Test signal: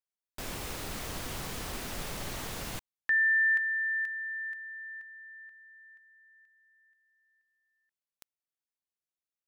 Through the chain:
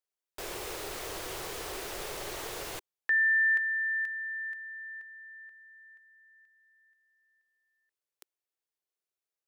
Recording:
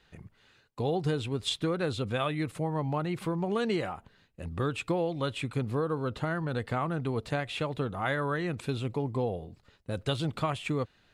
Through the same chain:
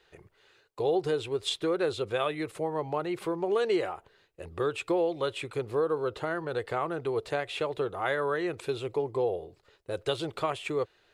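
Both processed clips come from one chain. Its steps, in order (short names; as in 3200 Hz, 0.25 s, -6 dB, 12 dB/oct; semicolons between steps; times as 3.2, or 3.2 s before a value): resonant low shelf 300 Hz -7.5 dB, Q 3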